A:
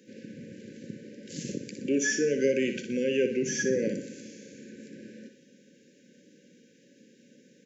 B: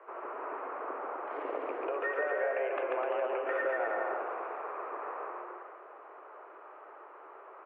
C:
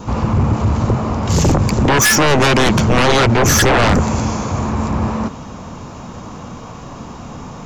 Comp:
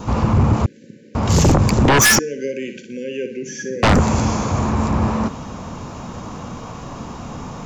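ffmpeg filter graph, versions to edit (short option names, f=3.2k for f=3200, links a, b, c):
-filter_complex "[0:a]asplit=2[a][b];[2:a]asplit=3[c][d][e];[c]atrim=end=0.662[f];[a]atrim=start=0.658:end=1.152[g];[d]atrim=start=1.148:end=2.192[h];[b]atrim=start=2.188:end=3.832[i];[e]atrim=start=3.828[j];[f][g]acrossfade=d=0.004:c1=hsin:c2=hsin[k];[k][h]acrossfade=d=0.004:c1=hsin:c2=hsin[l];[l][i]acrossfade=d=0.004:c1=hsin:c2=hsin[m];[m][j]acrossfade=d=0.004:c1=hsin:c2=hsin"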